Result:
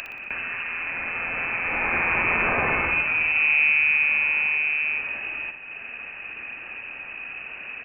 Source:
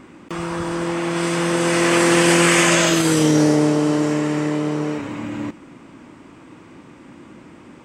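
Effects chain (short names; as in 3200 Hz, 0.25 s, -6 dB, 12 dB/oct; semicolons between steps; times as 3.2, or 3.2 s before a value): upward compressor, threshold -18 dBFS; inverted band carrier 2800 Hz; feedback echo 60 ms, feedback 49%, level -8 dB; gain -7 dB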